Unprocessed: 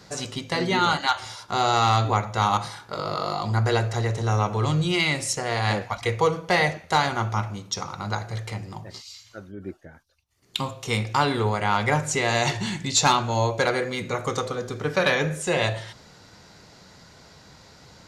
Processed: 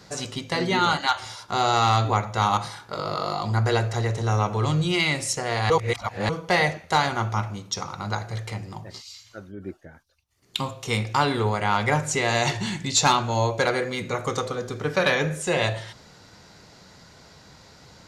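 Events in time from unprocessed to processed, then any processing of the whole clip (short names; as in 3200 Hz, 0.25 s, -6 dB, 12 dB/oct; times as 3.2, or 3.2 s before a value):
5.7–6.29 reverse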